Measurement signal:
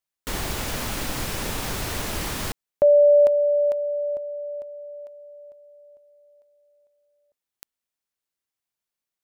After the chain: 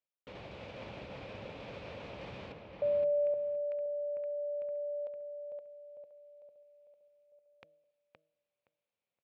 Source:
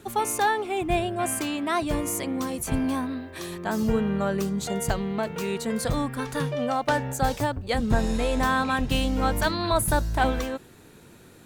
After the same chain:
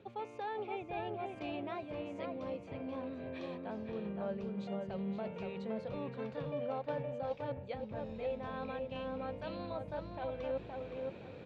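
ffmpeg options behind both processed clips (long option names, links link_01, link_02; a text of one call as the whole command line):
ffmpeg -i in.wav -filter_complex "[0:a]equalizer=frequency=1800:width=0.6:gain=-11.5,bandreject=frequency=157.4:width_type=h:width=4,bandreject=frequency=314.8:width_type=h:width=4,bandreject=frequency=472.2:width_type=h:width=4,bandreject=frequency=629.6:width_type=h:width=4,areverse,acompressor=threshold=-39dB:ratio=8:attack=0.12:release=300:knee=1:detection=rms,areverse,highpass=120,equalizer=frequency=150:width_type=q:width=4:gain=-3,equalizer=frequency=250:width_type=q:width=4:gain=-7,equalizer=frequency=360:width_type=q:width=4:gain=-5,equalizer=frequency=540:width_type=q:width=4:gain=8,equalizer=frequency=2400:width_type=q:width=4:gain=8,lowpass=frequency=3400:width=0.5412,lowpass=frequency=3400:width=1.3066,asplit=2[link_01][link_02];[link_02]adelay=519,lowpass=frequency=2600:poles=1,volume=-3.5dB,asplit=2[link_03][link_04];[link_04]adelay=519,lowpass=frequency=2600:poles=1,volume=0.21,asplit=2[link_05][link_06];[link_06]adelay=519,lowpass=frequency=2600:poles=1,volume=0.21[link_07];[link_01][link_03][link_05][link_07]amix=inputs=4:normalize=0,volume=4.5dB" out.wav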